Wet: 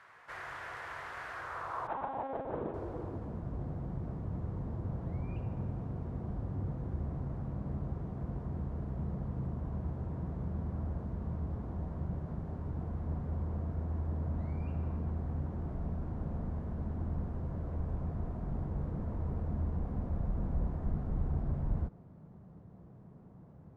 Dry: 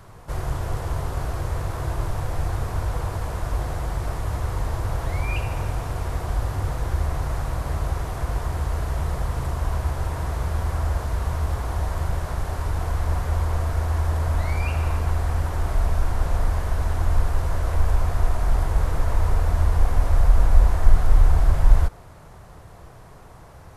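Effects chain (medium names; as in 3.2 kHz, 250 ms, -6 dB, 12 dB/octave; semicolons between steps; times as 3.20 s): 1.87–2.74 s: monotone LPC vocoder at 8 kHz 270 Hz; band-pass sweep 1.8 kHz -> 200 Hz, 1.28–3.42 s; trim +1.5 dB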